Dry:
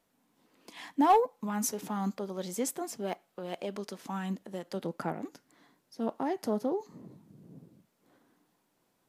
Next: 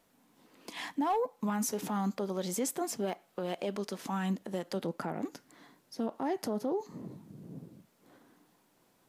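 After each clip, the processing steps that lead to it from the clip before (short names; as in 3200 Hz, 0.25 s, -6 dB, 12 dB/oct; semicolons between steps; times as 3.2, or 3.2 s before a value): in parallel at -1 dB: compressor, threshold -39 dBFS, peak gain reduction 18.5 dB; on the sum: limiter -24 dBFS, peak gain reduction 9.5 dB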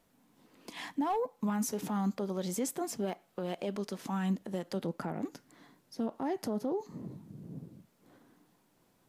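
low shelf 180 Hz +8 dB; gain -2.5 dB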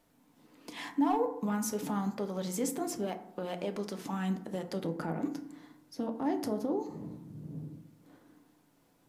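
FDN reverb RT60 0.74 s, low-frequency decay 1.4×, high-frequency decay 0.4×, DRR 6 dB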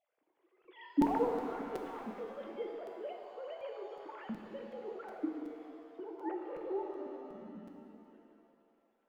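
sine-wave speech; crackling interface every 0.37 s, samples 256, repeat, from 0.64; shimmer reverb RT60 2.4 s, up +7 st, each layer -8 dB, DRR 3 dB; gain -6.5 dB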